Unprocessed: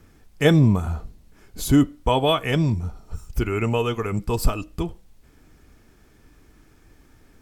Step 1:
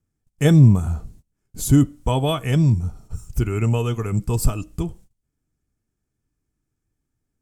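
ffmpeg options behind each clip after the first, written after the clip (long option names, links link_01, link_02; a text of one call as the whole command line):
ffmpeg -i in.wav -af "agate=range=-25dB:threshold=-44dB:ratio=16:detection=peak,equalizer=frequency=125:width_type=o:width=1:gain=7,equalizer=frequency=500:width_type=o:width=1:gain=-3,equalizer=frequency=1000:width_type=o:width=1:gain=-3,equalizer=frequency=2000:width_type=o:width=1:gain=-4,equalizer=frequency=4000:width_type=o:width=1:gain=-5,equalizer=frequency=8000:width_type=o:width=1:gain=7" out.wav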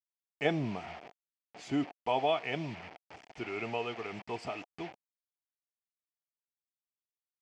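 ffmpeg -i in.wav -af "acrusher=bits=5:mix=0:aa=0.000001,highpass=500,equalizer=frequency=510:width_type=q:width=4:gain=-4,equalizer=frequency=720:width_type=q:width=4:gain=7,equalizer=frequency=1100:width_type=q:width=4:gain=-6,equalizer=frequency=1500:width_type=q:width=4:gain=-6,equalizer=frequency=2300:width_type=q:width=4:gain=4,equalizer=frequency=3800:width_type=q:width=4:gain=-10,lowpass=frequency=4000:width=0.5412,lowpass=frequency=4000:width=1.3066,volume=-4.5dB" out.wav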